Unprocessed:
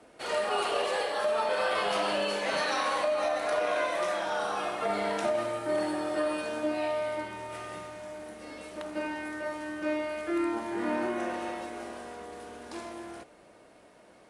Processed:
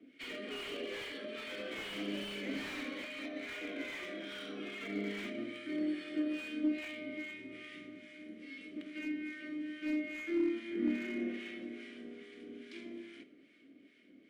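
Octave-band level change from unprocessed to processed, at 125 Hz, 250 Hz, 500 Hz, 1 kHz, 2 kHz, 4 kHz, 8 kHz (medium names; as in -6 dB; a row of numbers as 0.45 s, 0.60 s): no reading, -1.0 dB, -14.0 dB, -23.5 dB, -8.0 dB, -7.5 dB, under -10 dB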